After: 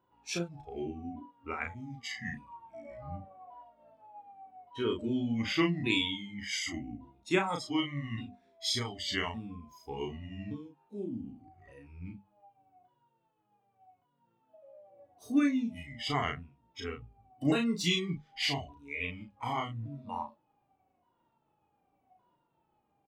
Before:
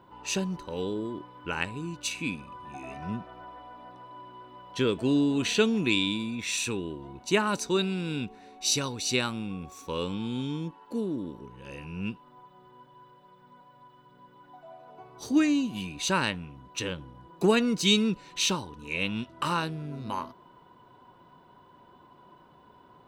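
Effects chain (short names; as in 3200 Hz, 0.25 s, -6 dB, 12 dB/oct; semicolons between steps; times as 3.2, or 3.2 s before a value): repeated pitch sweeps -5.5 st, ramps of 1.168 s; notches 50/100/150/200/250 Hz; spectral noise reduction 15 dB; doubler 35 ms -4 dB; gain -4.5 dB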